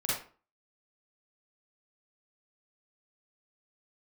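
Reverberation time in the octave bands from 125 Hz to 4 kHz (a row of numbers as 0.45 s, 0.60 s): 0.40 s, 0.45 s, 0.40 s, 0.40 s, 0.35 s, 0.30 s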